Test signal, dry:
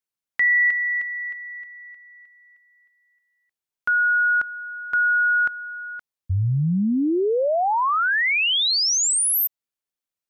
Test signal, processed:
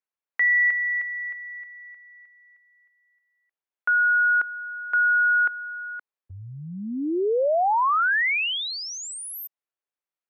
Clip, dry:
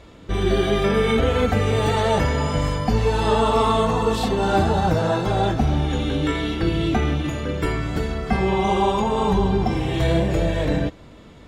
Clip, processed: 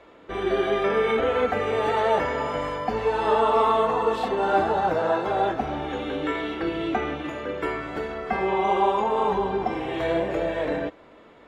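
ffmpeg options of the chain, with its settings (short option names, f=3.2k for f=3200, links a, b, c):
-filter_complex "[0:a]acrossover=split=310 2700:gain=0.112 1 0.178[a][b][c];[a][b][c]amix=inputs=3:normalize=0"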